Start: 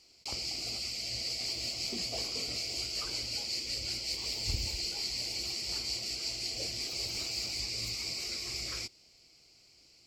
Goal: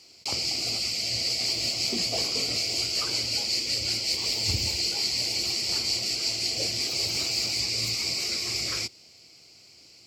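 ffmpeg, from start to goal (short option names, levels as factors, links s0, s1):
-af "highpass=f=78:w=0.5412,highpass=f=78:w=1.3066,volume=2.66"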